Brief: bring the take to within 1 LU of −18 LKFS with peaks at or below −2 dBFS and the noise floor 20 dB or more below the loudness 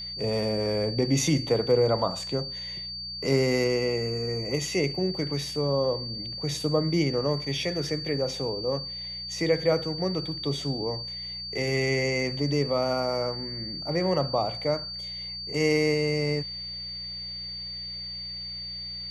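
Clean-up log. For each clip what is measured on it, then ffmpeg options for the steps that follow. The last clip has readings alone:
mains hum 60 Hz; hum harmonics up to 180 Hz; level of the hum −45 dBFS; interfering tone 4,600 Hz; level of the tone −34 dBFS; integrated loudness −27.5 LKFS; sample peak −11.0 dBFS; target loudness −18.0 LKFS
→ -af "bandreject=frequency=60:width_type=h:width=4,bandreject=frequency=120:width_type=h:width=4,bandreject=frequency=180:width_type=h:width=4"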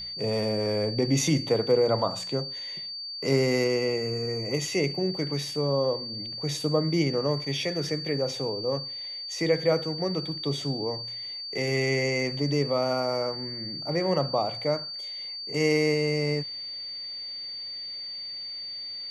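mains hum none found; interfering tone 4,600 Hz; level of the tone −34 dBFS
→ -af "bandreject=frequency=4600:width=30"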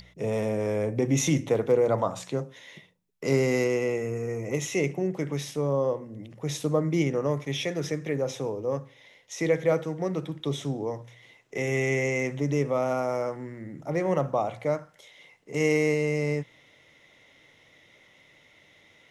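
interfering tone none found; integrated loudness −28.0 LKFS; sample peak −11.0 dBFS; target loudness −18.0 LKFS
→ -af "volume=10dB,alimiter=limit=-2dB:level=0:latency=1"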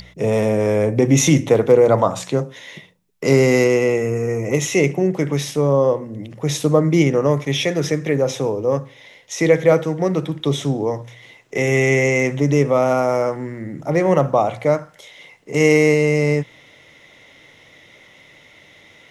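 integrated loudness −18.0 LKFS; sample peak −2.0 dBFS; background noise floor −49 dBFS

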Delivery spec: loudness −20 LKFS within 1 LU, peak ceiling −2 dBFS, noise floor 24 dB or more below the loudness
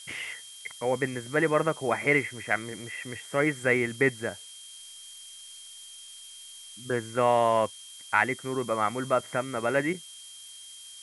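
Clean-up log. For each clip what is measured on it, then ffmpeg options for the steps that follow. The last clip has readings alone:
interfering tone 3,200 Hz; level of the tone −47 dBFS; background noise floor −47 dBFS; target noise floor −52 dBFS; integrated loudness −27.5 LKFS; sample peak −8.5 dBFS; target loudness −20.0 LKFS
→ -af "bandreject=frequency=3200:width=30"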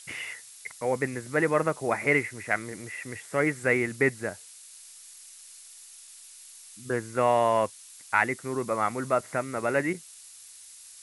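interfering tone none found; background noise floor −49 dBFS; target noise floor −52 dBFS
→ -af "afftdn=noise_reduction=6:noise_floor=-49"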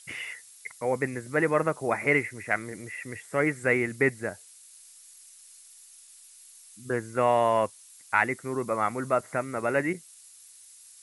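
background noise floor −53 dBFS; integrated loudness −27.5 LKFS; sample peak −8.5 dBFS; target loudness −20.0 LKFS
→ -af "volume=7.5dB,alimiter=limit=-2dB:level=0:latency=1"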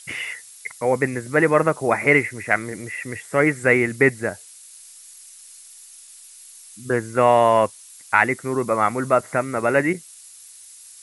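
integrated loudness −20.0 LKFS; sample peak −2.0 dBFS; background noise floor −45 dBFS

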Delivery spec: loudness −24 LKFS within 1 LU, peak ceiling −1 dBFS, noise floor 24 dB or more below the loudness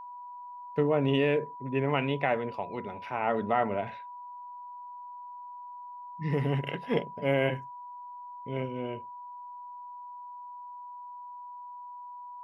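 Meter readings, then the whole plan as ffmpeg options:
interfering tone 980 Hz; level of the tone −41 dBFS; integrated loudness −30.5 LKFS; sample peak −13.0 dBFS; target loudness −24.0 LKFS
→ -af "bandreject=frequency=980:width=30"
-af "volume=6.5dB"

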